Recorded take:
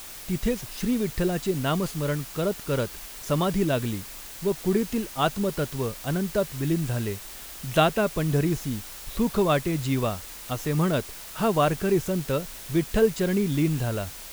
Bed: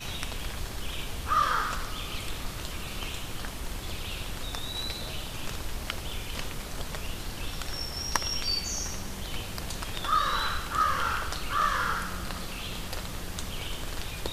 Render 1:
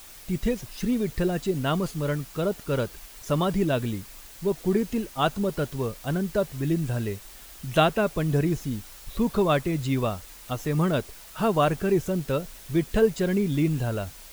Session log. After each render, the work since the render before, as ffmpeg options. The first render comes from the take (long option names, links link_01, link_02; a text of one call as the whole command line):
ffmpeg -i in.wav -af "afftdn=noise_reduction=6:noise_floor=-41" out.wav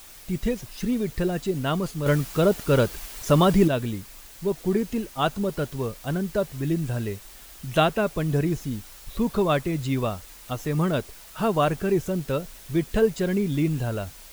ffmpeg -i in.wav -filter_complex "[0:a]asettb=1/sr,asplit=3[link_01][link_02][link_03];[link_01]atrim=end=2.064[link_04];[link_02]atrim=start=2.06:end=3.68,asetpts=PTS-STARTPTS,afade=type=in:duration=0.004:curve=qsin,afade=type=out:start_time=1.616:duration=0.004:curve=qsin,acontrast=70[link_05];[link_03]atrim=start=3.676[link_06];[link_04][link_05]acrossfade=duration=0.004:curve1=hsin:curve2=qsin[link_07];[link_07][link_06]acrossfade=duration=0.004:curve1=qsin:curve2=hsin" out.wav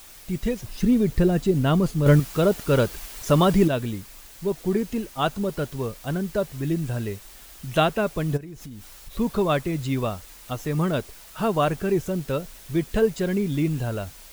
ffmpeg -i in.wav -filter_complex "[0:a]asettb=1/sr,asplit=3[link_01][link_02][link_03];[link_01]atrim=end=0.644[link_04];[link_02]atrim=start=0.64:end=2.2,asetpts=PTS-STARTPTS,afade=type=in:duration=0.004:curve=qsin,afade=type=out:start_time=1.556:duration=0.004:curve=qsin,lowshelf=frequency=450:gain=8[link_05];[link_03]atrim=start=2.196[link_06];[link_04][link_05]acrossfade=duration=0.004:curve1=hsin:curve2=qsin[link_07];[link_07][link_06]acrossfade=duration=0.004:curve1=qsin:curve2=hsin,asplit=3[link_08][link_09][link_10];[link_08]afade=type=out:start_time=8.36:duration=0.02[link_11];[link_09]acompressor=threshold=-35dB:ratio=10:attack=3.2:release=140:knee=1:detection=peak,afade=type=in:start_time=8.36:duration=0.02,afade=type=out:start_time=9.16:duration=0.02[link_12];[link_10]afade=type=in:start_time=9.16:duration=0.02[link_13];[link_11][link_12][link_13]amix=inputs=3:normalize=0" out.wav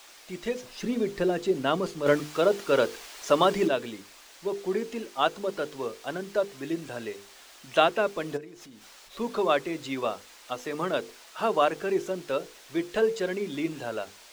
ffmpeg -i in.wav -filter_complex "[0:a]acrossover=split=280 7500:gain=0.0631 1 0.224[link_01][link_02][link_03];[link_01][link_02][link_03]amix=inputs=3:normalize=0,bandreject=frequency=50:width_type=h:width=6,bandreject=frequency=100:width_type=h:width=6,bandreject=frequency=150:width_type=h:width=6,bandreject=frequency=200:width_type=h:width=6,bandreject=frequency=250:width_type=h:width=6,bandreject=frequency=300:width_type=h:width=6,bandreject=frequency=350:width_type=h:width=6,bandreject=frequency=400:width_type=h:width=6,bandreject=frequency=450:width_type=h:width=6,bandreject=frequency=500:width_type=h:width=6" out.wav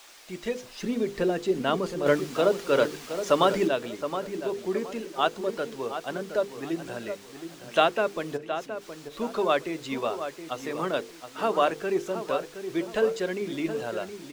ffmpeg -i in.wav -filter_complex "[0:a]asplit=2[link_01][link_02];[link_02]adelay=719,lowpass=frequency=2000:poles=1,volume=-9dB,asplit=2[link_03][link_04];[link_04]adelay=719,lowpass=frequency=2000:poles=1,volume=0.32,asplit=2[link_05][link_06];[link_06]adelay=719,lowpass=frequency=2000:poles=1,volume=0.32,asplit=2[link_07][link_08];[link_08]adelay=719,lowpass=frequency=2000:poles=1,volume=0.32[link_09];[link_01][link_03][link_05][link_07][link_09]amix=inputs=5:normalize=0" out.wav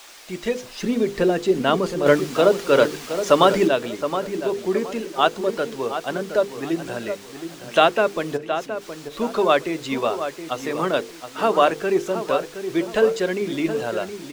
ffmpeg -i in.wav -af "volume=6.5dB,alimiter=limit=-2dB:level=0:latency=1" out.wav